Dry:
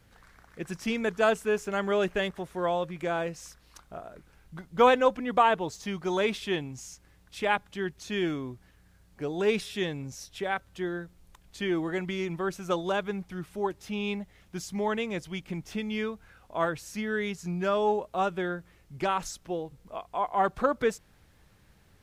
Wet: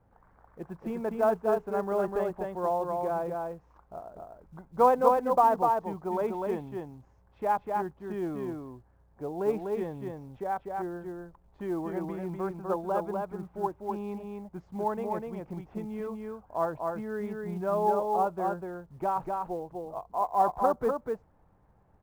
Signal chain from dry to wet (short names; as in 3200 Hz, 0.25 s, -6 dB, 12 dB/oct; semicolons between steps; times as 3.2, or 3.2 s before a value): synth low-pass 890 Hz, resonance Q 2.2; echo 0.248 s -3.5 dB; short-mantissa float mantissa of 4-bit; gain -5 dB